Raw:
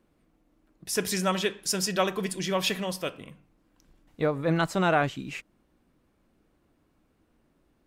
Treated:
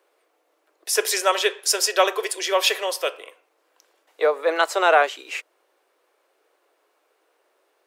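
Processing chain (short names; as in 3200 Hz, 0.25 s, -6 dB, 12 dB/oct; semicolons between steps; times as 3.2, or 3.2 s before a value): steep high-pass 400 Hz 48 dB/oct; gain +8 dB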